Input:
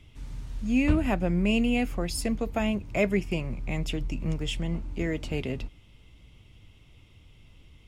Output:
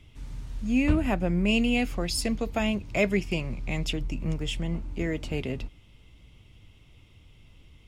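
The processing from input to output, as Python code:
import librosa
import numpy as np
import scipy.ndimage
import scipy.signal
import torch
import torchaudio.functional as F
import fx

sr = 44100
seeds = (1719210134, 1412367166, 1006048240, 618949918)

y = fx.peak_eq(x, sr, hz=4400.0, db=6.0, octaves=1.6, at=(1.48, 3.93))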